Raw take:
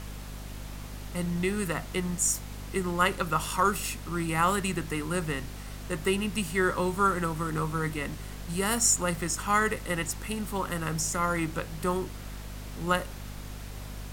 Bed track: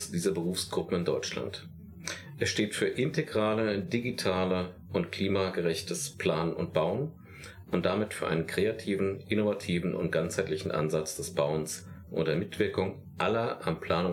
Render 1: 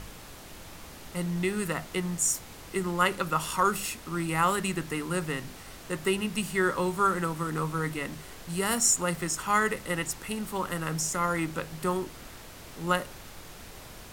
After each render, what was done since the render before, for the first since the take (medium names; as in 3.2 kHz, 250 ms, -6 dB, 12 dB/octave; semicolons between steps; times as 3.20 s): de-hum 50 Hz, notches 5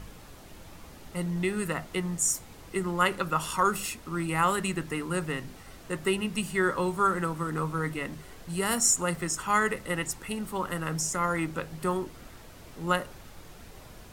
noise reduction 6 dB, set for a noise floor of -46 dBFS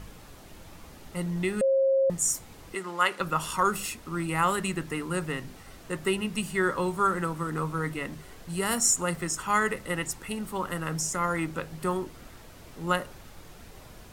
1.61–2.10 s: bleep 538 Hz -19.5 dBFS; 2.75–3.20 s: frequency weighting A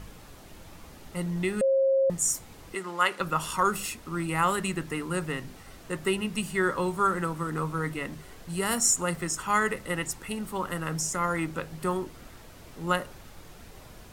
no audible change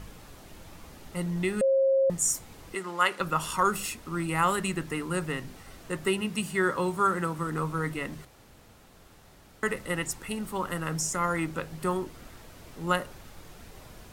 6.07–7.39 s: high-pass 74 Hz; 8.25–9.63 s: room tone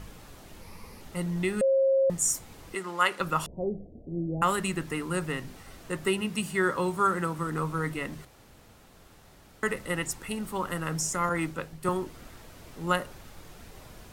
0.61–1.01 s: rippled EQ curve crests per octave 0.87, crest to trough 9 dB; 3.46–4.42 s: steep low-pass 700 Hz 72 dB/octave; 11.29–11.89 s: three bands expanded up and down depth 100%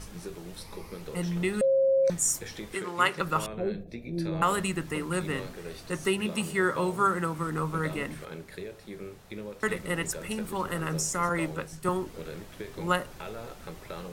add bed track -12 dB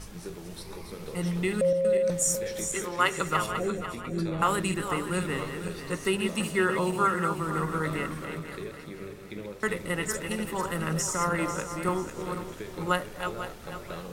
backward echo that repeats 247 ms, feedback 59%, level -7 dB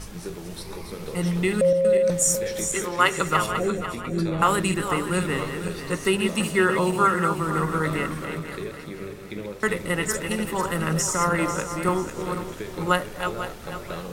trim +5 dB